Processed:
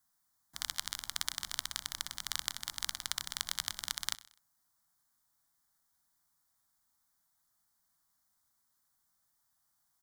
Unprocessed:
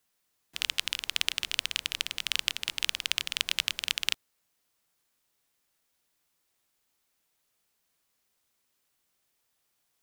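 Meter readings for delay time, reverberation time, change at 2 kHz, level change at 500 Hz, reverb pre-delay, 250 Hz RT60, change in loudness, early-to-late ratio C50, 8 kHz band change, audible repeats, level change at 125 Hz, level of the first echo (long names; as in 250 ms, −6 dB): 63 ms, no reverb audible, −10.5 dB, −8.5 dB, no reverb audible, no reverb audible, −7.5 dB, no reverb audible, −1.5 dB, 3, can't be measured, −18.0 dB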